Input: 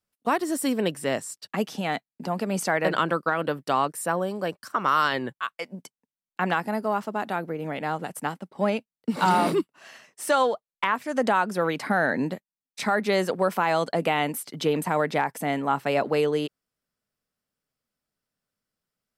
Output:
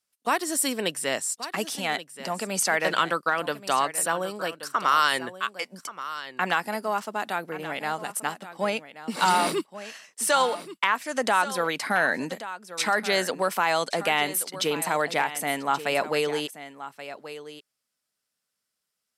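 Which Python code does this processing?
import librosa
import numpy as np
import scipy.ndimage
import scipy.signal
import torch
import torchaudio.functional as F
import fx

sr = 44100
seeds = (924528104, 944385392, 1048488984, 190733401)

p1 = scipy.signal.sosfilt(scipy.signal.butter(2, 11000.0, 'lowpass', fs=sr, output='sos'), x)
p2 = fx.tilt_eq(p1, sr, slope=3.0)
y = p2 + fx.echo_single(p2, sr, ms=1129, db=-13.5, dry=0)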